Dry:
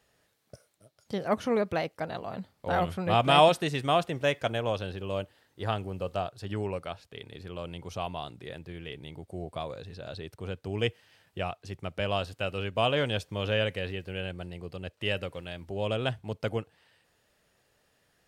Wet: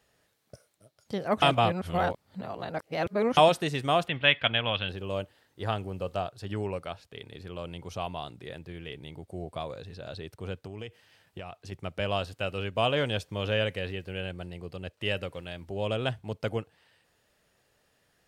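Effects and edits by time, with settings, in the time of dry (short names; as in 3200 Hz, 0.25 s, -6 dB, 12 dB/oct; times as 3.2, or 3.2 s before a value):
1.42–3.37 reverse
4.08–4.89 EQ curve 250 Hz 0 dB, 380 Hz -7 dB, 3300 Hz +13 dB, 6100 Hz -21 dB
10.59–11.72 compressor 12:1, threshold -35 dBFS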